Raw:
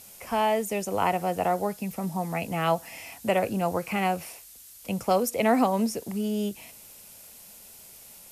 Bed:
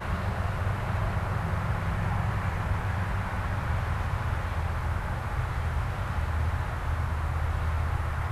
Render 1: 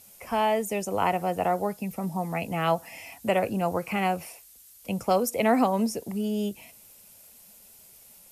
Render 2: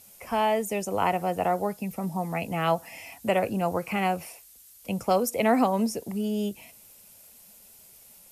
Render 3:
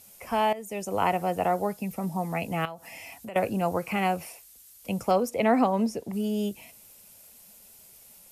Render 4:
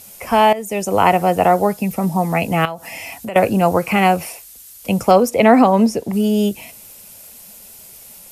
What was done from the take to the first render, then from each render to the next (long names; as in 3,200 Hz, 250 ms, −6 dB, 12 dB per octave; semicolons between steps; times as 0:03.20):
broadband denoise 6 dB, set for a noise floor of −49 dBFS
no processing that can be heard
0:00.53–0:00.98: fade in, from −16 dB; 0:02.65–0:03.36: downward compressor 4 to 1, threshold −38 dBFS; 0:05.11–0:06.13: low-pass filter 3,600 Hz 6 dB per octave
level +12 dB; brickwall limiter −1 dBFS, peak gain reduction 2.5 dB